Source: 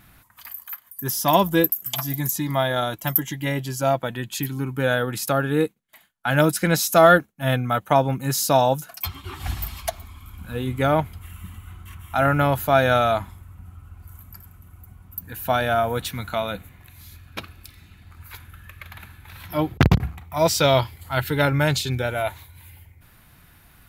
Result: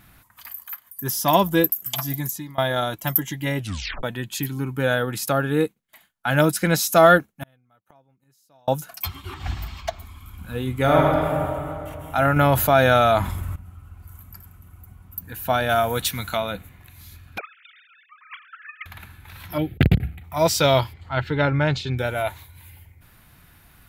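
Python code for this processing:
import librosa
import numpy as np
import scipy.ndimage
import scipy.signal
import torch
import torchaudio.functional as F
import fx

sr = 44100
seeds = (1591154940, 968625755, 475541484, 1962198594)

y = fx.gate_flip(x, sr, shuts_db=-23.0, range_db=-39, at=(7.43, 8.68))
y = fx.moving_average(y, sr, points=4, at=(9.34, 9.99))
y = fx.reverb_throw(y, sr, start_s=10.79, length_s=0.46, rt60_s=2.7, drr_db=-2.5)
y = fx.env_flatten(y, sr, amount_pct=50, at=(12.36, 13.56))
y = fx.high_shelf(y, sr, hz=2600.0, db=8.5, at=(15.69, 16.37))
y = fx.sine_speech(y, sr, at=(17.38, 18.86))
y = fx.fixed_phaser(y, sr, hz=2500.0, stages=4, at=(19.58, 20.24))
y = fx.air_absorb(y, sr, metres=170.0, at=(20.92, 21.97), fade=0.02)
y = fx.edit(y, sr, fx.fade_out_to(start_s=2.12, length_s=0.46, floor_db=-22.5),
    fx.tape_stop(start_s=3.59, length_s=0.44), tone=tone)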